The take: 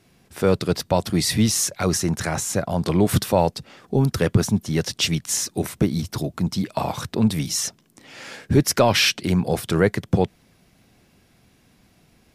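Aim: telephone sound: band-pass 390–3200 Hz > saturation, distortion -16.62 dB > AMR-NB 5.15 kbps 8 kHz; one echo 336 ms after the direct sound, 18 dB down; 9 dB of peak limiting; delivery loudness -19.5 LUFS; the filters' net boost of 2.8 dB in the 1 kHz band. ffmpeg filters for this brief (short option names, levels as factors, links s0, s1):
-af "equalizer=f=1000:t=o:g=4,alimiter=limit=0.237:level=0:latency=1,highpass=390,lowpass=3200,aecho=1:1:336:0.126,asoftclip=threshold=0.119,volume=5.31" -ar 8000 -c:a libopencore_amrnb -b:a 5150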